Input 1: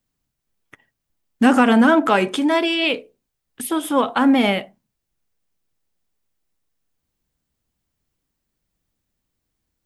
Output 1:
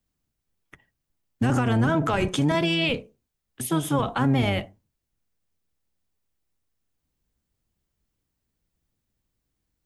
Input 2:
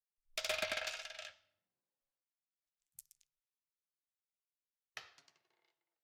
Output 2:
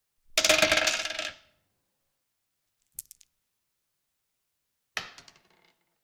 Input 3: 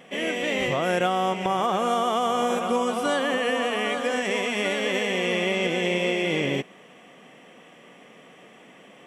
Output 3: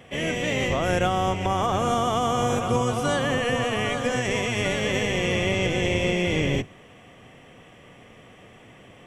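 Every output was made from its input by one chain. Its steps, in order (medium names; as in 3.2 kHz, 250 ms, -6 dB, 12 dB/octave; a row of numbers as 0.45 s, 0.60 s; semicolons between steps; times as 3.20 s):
octave divider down 1 oct, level +2 dB; dynamic bell 6.4 kHz, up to +7 dB, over -54 dBFS, Q 3.3; peak limiter -10.5 dBFS; normalise loudness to -24 LUFS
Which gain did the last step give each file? -3.5 dB, +15.5 dB, -0.5 dB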